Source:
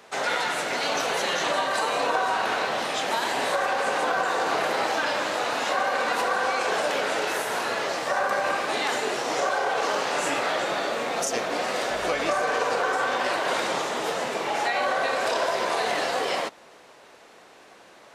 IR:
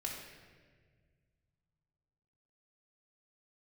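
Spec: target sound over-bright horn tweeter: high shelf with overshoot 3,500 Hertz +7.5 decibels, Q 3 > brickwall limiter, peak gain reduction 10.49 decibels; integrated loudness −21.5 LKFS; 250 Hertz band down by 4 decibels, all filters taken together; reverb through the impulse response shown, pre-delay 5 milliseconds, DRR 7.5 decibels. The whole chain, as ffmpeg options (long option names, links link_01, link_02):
-filter_complex "[0:a]equalizer=frequency=250:width_type=o:gain=-5.5,asplit=2[link_01][link_02];[1:a]atrim=start_sample=2205,adelay=5[link_03];[link_02][link_03]afir=irnorm=-1:irlink=0,volume=-8dB[link_04];[link_01][link_04]amix=inputs=2:normalize=0,highshelf=frequency=3500:width_type=q:width=3:gain=7.5,volume=2dB,alimiter=limit=-13dB:level=0:latency=1"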